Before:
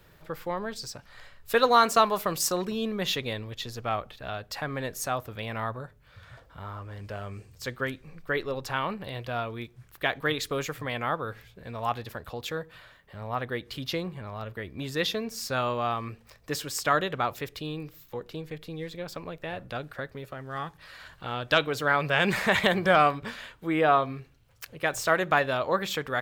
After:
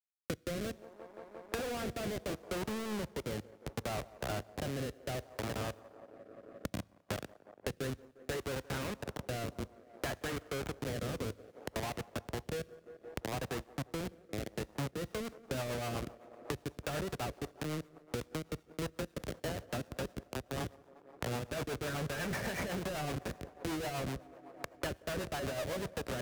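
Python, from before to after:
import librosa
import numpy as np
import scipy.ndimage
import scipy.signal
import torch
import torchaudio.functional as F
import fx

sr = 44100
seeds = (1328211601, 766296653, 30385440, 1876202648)

y = scipy.signal.sosfilt(scipy.signal.cheby1(6, 6, 2400.0, 'lowpass', fs=sr, output='sos'), x)
y = fx.schmitt(y, sr, flips_db=-35.5)
y = scipy.signal.sosfilt(scipy.signal.butter(4, 49.0, 'highpass', fs=sr, output='sos'), y)
y = fx.echo_wet_bandpass(y, sr, ms=175, feedback_pct=72, hz=590.0, wet_db=-15.5)
y = fx.rev_double_slope(y, sr, seeds[0], early_s=0.82, late_s=3.1, knee_db=-20, drr_db=16.0)
y = fx.power_curve(y, sr, exponent=1.4)
y = fx.rotary_switch(y, sr, hz=0.65, then_hz=8.0, switch_at_s=14.62)
y = fx.band_squash(y, sr, depth_pct=100)
y = y * librosa.db_to_amplitude(1.0)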